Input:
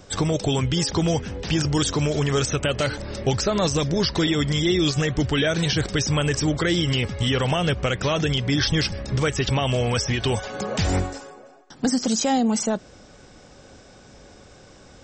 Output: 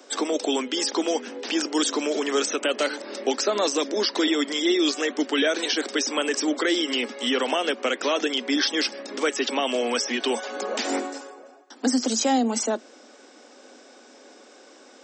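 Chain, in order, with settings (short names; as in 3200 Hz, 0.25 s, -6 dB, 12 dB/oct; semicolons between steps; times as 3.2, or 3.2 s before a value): steep high-pass 230 Hz 96 dB/oct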